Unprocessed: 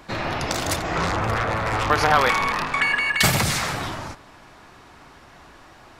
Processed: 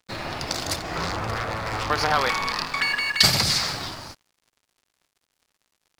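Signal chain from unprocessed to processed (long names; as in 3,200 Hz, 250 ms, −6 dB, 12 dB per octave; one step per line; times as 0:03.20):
parametric band 4,700 Hz +8 dB 0.59 octaves, from 0:02.47 +15 dB
dead-zone distortion −38.5 dBFS
level −4 dB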